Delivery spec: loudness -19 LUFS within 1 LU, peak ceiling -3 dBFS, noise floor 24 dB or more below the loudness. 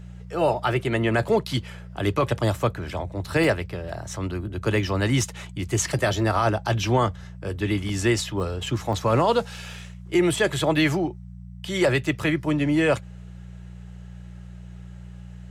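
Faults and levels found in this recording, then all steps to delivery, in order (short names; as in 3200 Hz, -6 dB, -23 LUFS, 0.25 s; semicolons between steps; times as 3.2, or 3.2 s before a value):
dropouts 5; longest dropout 2.4 ms; hum 60 Hz; harmonics up to 180 Hz; hum level -39 dBFS; loudness -24.0 LUFS; peak -10.0 dBFS; loudness target -19.0 LUFS
-> interpolate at 0.72/3.44/7.89/8.4/8.93, 2.4 ms; de-hum 60 Hz, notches 3; gain +5 dB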